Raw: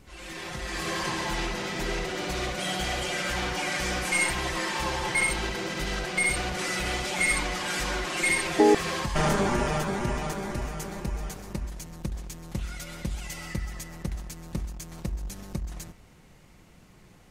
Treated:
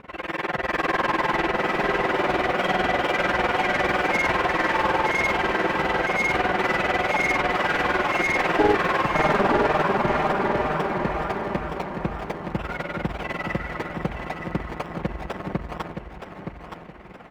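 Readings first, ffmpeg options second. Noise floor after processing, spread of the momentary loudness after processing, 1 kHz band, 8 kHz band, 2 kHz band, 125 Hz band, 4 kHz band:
−41 dBFS, 11 LU, +10.0 dB, −12.0 dB, +6.0 dB, +1.5 dB, −0.5 dB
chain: -filter_complex "[0:a]tremolo=f=20:d=0.974,acrossover=split=3100[link_01][link_02];[link_02]acrusher=samples=28:mix=1:aa=0.000001:lfo=1:lforange=16.8:lforate=2.2[link_03];[link_01][link_03]amix=inputs=2:normalize=0,asplit=2[link_04][link_05];[link_05]highpass=frequency=720:poles=1,volume=29dB,asoftclip=type=tanh:threshold=-8.5dB[link_06];[link_04][link_06]amix=inputs=2:normalize=0,lowpass=frequency=1300:poles=1,volume=-6dB,aecho=1:1:920|1840|2760|3680:0.447|0.147|0.0486|0.0161,volume=-1dB"

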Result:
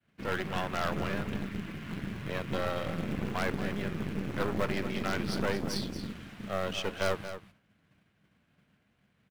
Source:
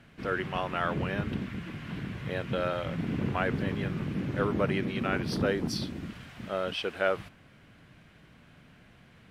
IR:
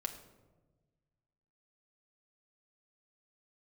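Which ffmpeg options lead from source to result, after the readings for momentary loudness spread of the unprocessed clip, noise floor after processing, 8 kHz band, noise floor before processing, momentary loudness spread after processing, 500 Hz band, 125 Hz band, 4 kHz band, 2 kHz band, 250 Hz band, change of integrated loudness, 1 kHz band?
9 LU, −72 dBFS, +2.5 dB, −57 dBFS, 7 LU, −3.0 dB, −3.5 dB, −0.5 dB, −2.0 dB, −2.5 dB, −2.5 dB, −2.0 dB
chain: -filter_complex "[0:a]highpass=frequency=42:width=0.5412,highpass=frequency=42:width=1.3066,bandreject=frequency=60:width_type=h:width=6,bandreject=frequency=120:width_type=h:width=6,bandreject=frequency=180:width_type=h:width=6,bandreject=frequency=240:width_type=h:width=6,bandreject=frequency=300:width_type=h:width=6,agate=range=-33dB:threshold=-47dB:ratio=3:detection=peak,equalizer=frequency=200:width_type=o:width=0.22:gain=6.5,acrossover=split=410|3000[link_01][link_02][link_03];[link_01]acompressor=threshold=-30dB:ratio=6[link_04];[link_04][link_02][link_03]amix=inputs=3:normalize=0,aeval=exprs='0.211*(cos(1*acos(clip(val(0)/0.211,-1,1)))-cos(1*PI/2))+0.0422*(cos(4*acos(clip(val(0)/0.211,-1,1)))-cos(4*PI/2))+0.0237*(cos(5*acos(clip(val(0)/0.211,-1,1)))-cos(5*PI/2))+0.075*(cos(6*acos(clip(val(0)/0.211,-1,1)))-cos(6*PI/2))':channel_layout=same,asplit=2[link_05][link_06];[link_06]acrusher=bits=2:mode=log:mix=0:aa=0.000001,volume=-9.5dB[link_07];[link_05][link_07]amix=inputs=2:normalize=0,aecho=1:1:230:0.282,volume=-8.5dB"

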